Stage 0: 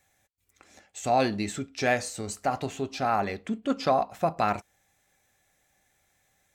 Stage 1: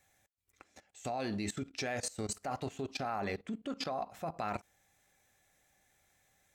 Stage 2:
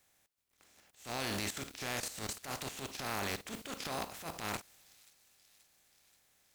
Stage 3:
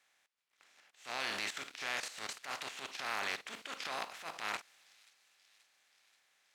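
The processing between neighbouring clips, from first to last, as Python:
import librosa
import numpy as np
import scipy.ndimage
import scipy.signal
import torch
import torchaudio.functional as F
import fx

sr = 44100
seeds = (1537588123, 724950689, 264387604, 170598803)

y1 = fx.level_steps(x, sr, step_db=18)
y2 = fx.spec_flatten(y1, sr, power=0.42)
y2 = fx.transient(y2, sr, attack_db=-12, sustain_db=6)
y2 = fx.echo_wet_highpass(y2, sr, ms=531, feedback_pct=66, hz=3900.0, wet_db=-19.0)
y3 = fx.bandpass_q(y2, sr, hz=2000.0, q=0.68)
y3 = y3 * 10.0 ** (3.5 / 20.0)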